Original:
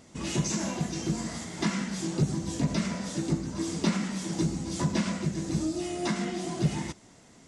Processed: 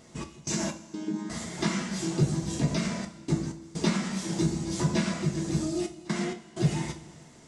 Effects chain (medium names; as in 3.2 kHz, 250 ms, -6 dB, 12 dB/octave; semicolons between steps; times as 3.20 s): 0.73–1.30 s: vocoder on a held chord bare fifth, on G#3; trance gate "x.x.xxxxxxxx" 64 bpm -24 dB; two-slope reverb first 0.28 s, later 2.1 s, from -18 dB, DRR 4 dB